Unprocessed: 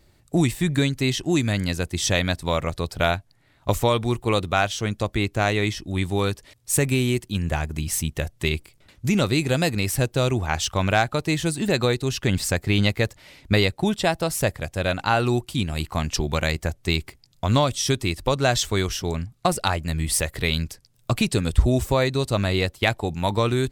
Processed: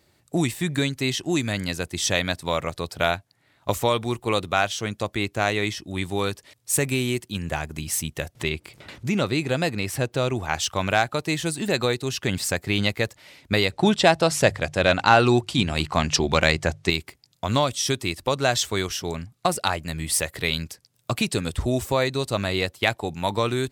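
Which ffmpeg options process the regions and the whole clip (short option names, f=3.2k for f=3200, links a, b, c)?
-filter_complex "[0:a]asettb=1/sr,asplit=3[a][b][c];[a]atrim=end=8.354[d];[b]atrim=start=8.35:end=10.35,asetpts=PTS-STARTPTS,afade=t=in:d=0.004:c=qsin,afade=t=out:st=1.996:d=0.004:c=qsin,aemphasis=mode=reproduction:type=cd,acompressor=mode=upward:threshold=-24dB:ratio=2.5:attack=3.2:release=140:knee=2.83:detection=peak[e];[c]atrim=start=10.346[f];[d][e]acrossfade=d=0.004:c1=hsin:c2=qsin[g];[g][f]acrossfade=d=0.004:c1=qsin:c2=hsin,asettb=1/sr,asplit=3[h][i][j];[h]atrim=end=13.714[k];[i]atrim=start=13.71:end=16.9,asetpts=PTS-STARTPTS,afade=t=in:d=0.004:c=qsin,afade=t=out:st=3.186:d=0.004:c=qsin,lowpass=6.9k,bandreject=f=50:t=h:w=6,bandreject=f=100:t=h:w=6,bandreject=f=150:t=h:w=6,acontrast=72[l];[j]atrim=start=16.896[m];[k][l]acrossfade=d=0.004:c1=hsin:c2=qsin[n];[n][m]acrossfade=d=0.004:c1=qsin:c2=hsin,highpass=83,lowshelf=f=300:g=-5"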